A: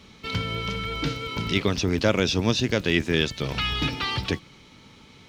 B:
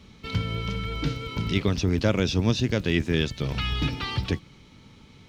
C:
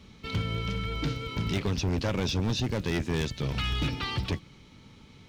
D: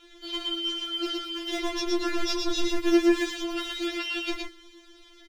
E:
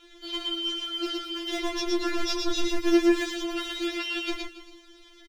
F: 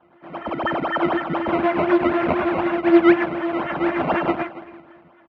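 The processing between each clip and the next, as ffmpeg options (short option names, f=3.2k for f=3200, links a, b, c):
-af "lowshelf=f=230:g=9,volume=-4.5dB"
-af "asoftclip=type=hard:threshold=-21.5dB,volume=-1.5dB"
-filter_complex "[0:a]asplit=2[a][b];[b]adelay=18,volume=-11dB[c];[a][c]amix=inputs=2:normalize=0,aecho=1:1:116:0.668,afftfilt=real='re*4*eq(mod(b,16),0)':imag='im*4*eq(mod(b,16),0)':win_size=2048:overlap=0.75,volume=5.5dB"
-af "aecho=1:1:280:0.141"
-af "acrusher=samples=18:mix=1:aa=0.000001:lfo=1:lforange=18:lforate=4,highpass=110,equalizer=f=110:t=q:w=4:g=-8,equalizer=f=450:t=q:w=4:g=-5,equalizer=f=680:t=q:w=4:g=5,lowpass=f=2.4k:w=0.5412,lowpass=f=2.4k:w=1.3066,dynaudnorm=f=180:g=7:m=13dB,volume=-1.5dB"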